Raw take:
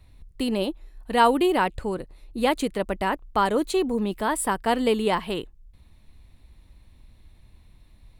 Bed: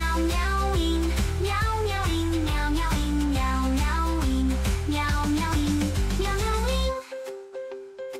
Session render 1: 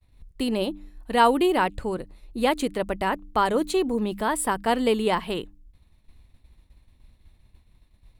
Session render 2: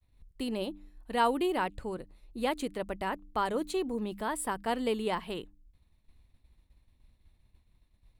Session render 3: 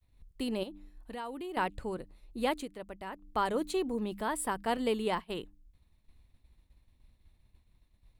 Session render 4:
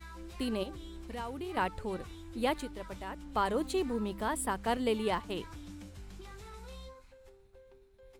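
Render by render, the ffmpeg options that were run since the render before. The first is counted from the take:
-af "bandreject=f=99.56:t=h:w=4,bandreject=f=199.12:t=h:w=4,bandreject=f=298.68:t=h:w=4,agate=range=-33dB:threshold=-45dB:ratio=3:detection=peak"
-af "volume=-8.5dB"
-filter_complex "[0:a]asettb=1/sr,asplit=3[a][b][c];[a]atrim=end=0.634[d];[b]atrim=start=0.63:end=1.57,asetpts=PTS-STARTPTS,afade=t=in:d=0.004:c=qsin,afade=t=out:st=0.936:d=0.004:c=qsin,acompressor=threshold=-41dB:ratio=3:attack=3.2:release=140:knee=1:detection=peak[e];[c]atrim=start=1.566[f];[d][e]acrossfade=d=0.004:c1=hsin:c2=qsin[g];[g][f]acrossfade=d=0.004:c1=qsin:c2=hsin,asettb=1/sr,asplit=3[h][i][j];[h]atrim=end=4.774[k];[i]atrim=start=4.77:end=5.32,asetpts=PTS-STARTPTS,afade=t=in:d=0.004:c=qsin,afade=t=out:st=0.546:d=0.004:c=qsin,agate=range=-33dB:threshold=-36dB:ratio=3:release=100:detection=peak[l];[j]atrim=start=5.316[m];[k][l]acrossfade=d=0.004:c1=hsin:c2=qsin[n];[n][m]acrossfade=d=0.004:c1=qsin:c2=hsin,asplit=3[o][p][q];[o]atrim=end=2.67,asetpts=PTS-STARTPTS,afade=t=out:st=2.54:d=0.13:silence=0.375837[r];[p]atrim=start=2.67:end=3.16,asetpts=PTS-STARTPTS,volume=-8.5dB[s];[q]atrim=start=3.16,asetpts=PTS-STARTPTS,afade=t=in:d=0.13:silence=0.375837[t];[r][s][t]concat=n=3:v=0:a=1"
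-filter_complex "[1:a]volume=-23dB[a];[0:a][a]amix=inputs=2:normalize=0"

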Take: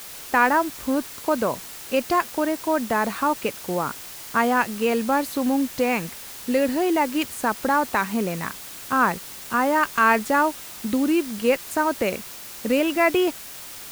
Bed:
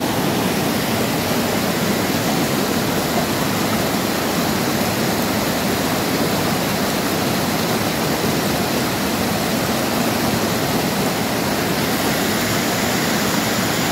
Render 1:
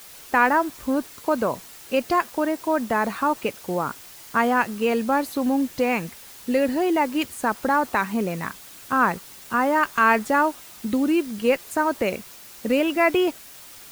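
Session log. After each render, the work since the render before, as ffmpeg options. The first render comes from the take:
-af "afftdn=nr=6:nf=-39"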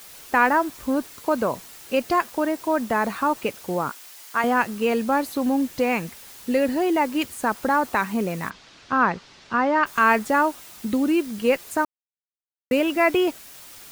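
-filter_complex "[0:a]asettb=1/sr,asplit=3[a][b][c];[a]atrim=end=3.904[d];[b]atrim=start=3.9:end=4.44,asetpts=PTS-STARTPTS,afade=t=in:d=0.004:c=qsin,afade=t=out:st=0.536:d=0.004:c=qsin,highpass=f=810:p=1[e];[c]atrim=start=4.436[f];[d][e]acrossfade=d=0.004:c1=hsin:c2=qsin[g];[g][f]acrossfade=d=0.004:c1=qsin:c2=hsin,asplit=3[h][i][j];[h]afade=t=out:st=8.49:d=0.02[k];[i]lowpass=f=5.3k:w=0.5412,lowpass=f=5.3k:w=1.3066,afade=t=in:st=8.49:d=0.02,afade=t=out:st=9.85:d=0.02[l];[j]afade=t=in:st=9.85:d=0.02[m];[k][l][m]amix=inputs=3:normalize=0,asplit=3[n][o][p];[n]atrim=end=11.85,asetpts=PTS-STARTPTS,afade=t=out:st=11.846:d=0.004:c=hsin[q];[o]atrim=start=11.85:end=12.71,asetpts=PTS-STARTPTS,volume=0[r];[p]atrim=start=12.71,asetpts=PTS-STARTPTS,afade=t=in:d=0.004:c=hsin[s];[q][r][s]concat=n=3:v=0:a=1"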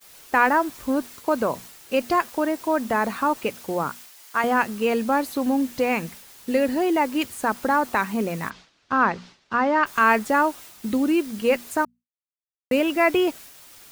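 -af "bandreject=f=60:t=h:w=6,bandreject=f=120:t=h:w=6,bandreject=f=180:t=h:w=6,bandreject=f=240:t=h:w=6,agate=range=-33dB:threshold=-39dB:ratio=3:detection=peak"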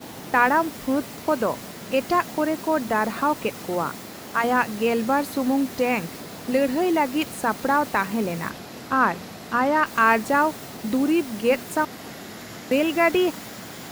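-filter_complex "[1:a]volume=-19.5dB[a];[0:a][a]amix=inputs=2:normalize=0"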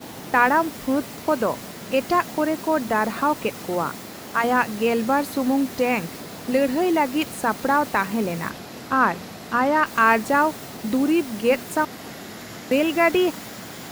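-af "volume=1dB"

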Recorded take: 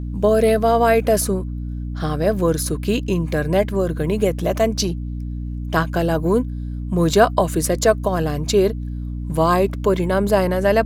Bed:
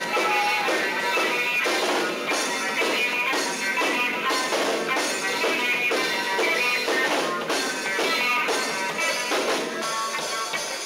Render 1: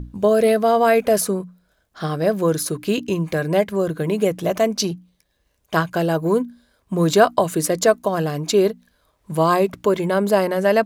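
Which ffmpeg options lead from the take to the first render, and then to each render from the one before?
-af "bandreject=f=60:t=h:w=6,bandreject=f=120:t=h:w=6,bandreject=f=180:t=h:w=6,bandreject=f=240:t=h:w=6,bandreject=f=300:t=h:w=6"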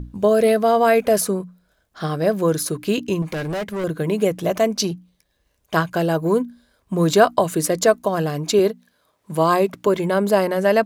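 -filter_complex "[0:a]asettb=1/sr,asplit=3[a][b][c];[a]atrim=end=3.224[d];[b]atrim=start=3.22:end=3.84,asetpts=PTS-STARTPTS,afade=t=in:d=0.004:c=qsin,afade=t=out:st=0.616:d=0.004:c=qsin,asoftclip=type=hard:threshold=-23dB[e];[c]atrim=start=3.836[f];[d][e]acrossfade=d=0.004:c1=hsin:c2=qsin[g];[g][f]acrossfade=d=0.004:c1=qsin:c2=hsin,asettb=1/sr,asplit=3[h][i][j];[h]atrim=end=8.594[k];[i]atrim=start=8.59:end=9.87,asetpts=PTS-STARTPTS,afade=t=in:d=0.004:c=qsin,afade=t=out:st=1.276:d=0.004:c=qsin,highpass=140[l];[j]atrim=start=9.866[m];[k][l]acrossfade=d=0.004:c1=hsin:c2=qsin[n];[n][m]acrossfade=d=0.004:c1=qsin:c2=hsin"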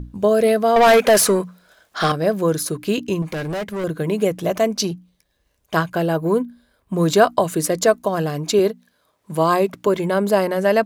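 -filter_complex "[0:a]asettb=1/sr,asplit=3[a][b][c];[a]atrim=end=0.764[d];[b]atrim=start=0.76:end=2.12,asetpts=PTS-STARTPTS,afade=t=in:d=0.004:c=qsin,afade=t=out:st=1.356:d=0.004:c=qsin,asplit=2[e][f];[f]highpass=f=720:p=1,volume=20dB,asoftclip=type=tanh:threshold=-5.5dB[g];[e][g]amix=inputs=2:normalize=0,lowpass=f=8k:p=1,volume=-6dB[h];[c]atrim=start=2.116[i];[d][h]acrossfade=d=0.004:c1=hsin:c2=qsin[j];[j][i]acrossfade=d=0.004:c1=qsin:c2=hsin,asettb=1/sr,asplit=3[k][l][m];[k]atrim=end=5.924[n];[l]atrim=start=5.92:end=6.94,asetpts=PTS-STARTPTS,afade=t=in:d=0.004:c=qsin,afade=t=out:st=1.016:d=0.004:c=qsin,equalizer=f=6.2k:t=o:w=0.97:g=-5.5[o];[m]atrim=start=6.936[p];[n][o]acrossfade=d=0.004:c1=hsin:c2=qsin[q];[q][p]acrossfade=d=0.004:c1=qsin:c2=hsin"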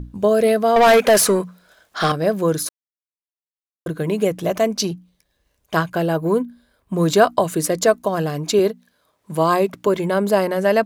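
-filter_complex "[0:a]asplit=3[a][b][c];[a]atrim=end=2.69,asetpts=PTS-STARTPTS,afade=t=out:st=2.686:d=0.004:c=hsin[d];[b]atrim=start=2.69:end=3.86,asetpts=PTS-STARTPTS,volume=0[e];[c]atrim=start=3.86,asetpts=PTS-STARTPTS,afade=t=in:d=0.004:c=hsin[f];[d][e][f]concat=n=3:v=0:a=1"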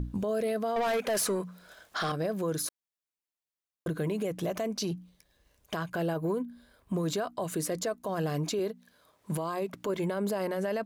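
-af "acompressor=threshold=-27dB:ratio=4,alimiter=limit=-23.5dB:level=0:latency=1:release=20"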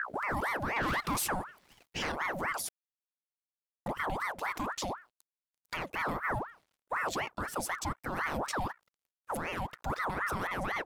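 -af "aeval=exprs='sgn(val(0))*max(abs(val(0))-0.00158,0)':c=same,aeval=exprs='val(0)*sin(2*PI*1000*n/s+1000*0.65/4*sin(2*PI*4*n/s))':c=same"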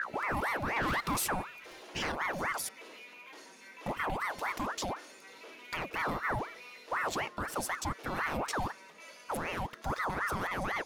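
-filter_complex "[1:a]volume=-27dB[a];[0:a][a]amix=inputs=2:normalize=0"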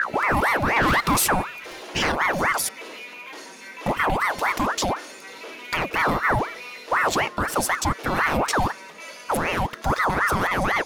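-af "volume=12dB"

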